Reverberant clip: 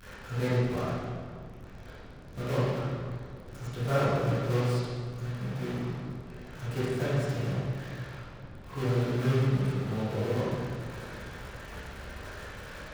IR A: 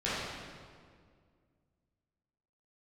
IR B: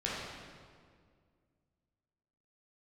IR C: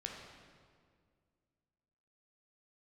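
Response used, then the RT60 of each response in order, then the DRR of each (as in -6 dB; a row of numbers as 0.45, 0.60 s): A; 2.0, 2.0, 2.0 s; -11.5, -7.0, -0.5 dB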